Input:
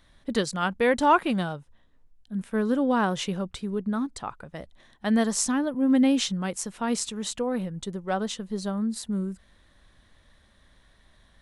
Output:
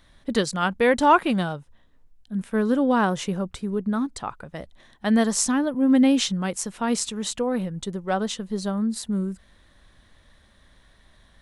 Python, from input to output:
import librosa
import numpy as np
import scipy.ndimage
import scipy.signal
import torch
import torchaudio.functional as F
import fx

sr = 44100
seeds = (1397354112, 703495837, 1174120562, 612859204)

y = fx.dynamic_eq(x, sr, hz=3400.0, q=1.0, threshold_db=-48.0, ratio=4.0, max_db=-6, at=(3.09, 3.92))
y = y * 10.0 ** (3.0 / 20.0)